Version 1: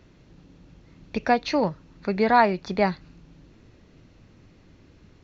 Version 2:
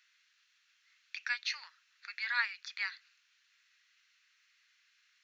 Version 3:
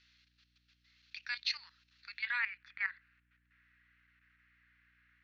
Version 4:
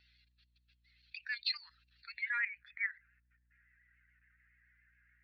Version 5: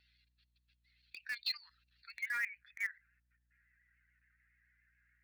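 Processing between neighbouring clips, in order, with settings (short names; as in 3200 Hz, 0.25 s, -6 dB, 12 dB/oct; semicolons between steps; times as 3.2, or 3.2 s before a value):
steep high-pass 1500 Hz 36 dB/oct; gain -3.5 dB
level quantiser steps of 12 dB; low-pass sweep 4400 Hz -> 1800 Hz, 2.08–2.58; hum 60 Hz, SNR 32 dB; gain -1.5 dB
spectral contrast raised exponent 1.9; vibrato 7.1 Hz 48 cents
AM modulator 100 Hz, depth 10%; in parallel at -12 dB: bit-crush 6-bit; on the sum: gain -3 dB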